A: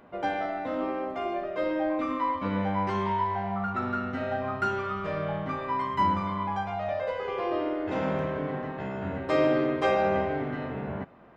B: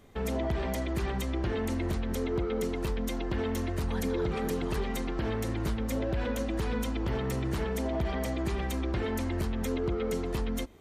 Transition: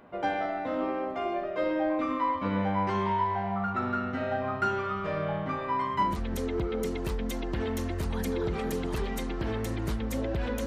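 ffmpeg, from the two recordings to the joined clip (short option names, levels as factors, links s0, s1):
-filter_complex "[0:a]apad=whole_dur=10.66,atrim=end=10.66,atrim=end=6.23,asetpts=PTS-STARTPTS[s0];[1:a]atrim=start=1.75:end=6.44,asetpts=PTS-STARTPTS[s1];[s0][s1]acrossfade=d=0.26:c1=tri:c2=tri"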